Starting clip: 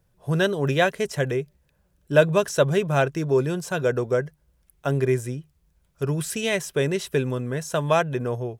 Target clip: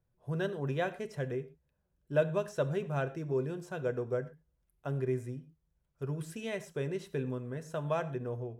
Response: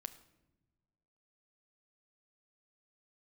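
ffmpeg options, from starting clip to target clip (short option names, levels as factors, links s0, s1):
-filter_complex "[0:a]highshelf=f=2200:g=-9[s0];[1:a]atrim=start_sample=2205,atrim=end_sample=6174[s1];[s0][s1]afir=irnorm=-1:irlink=0,volume=0.422"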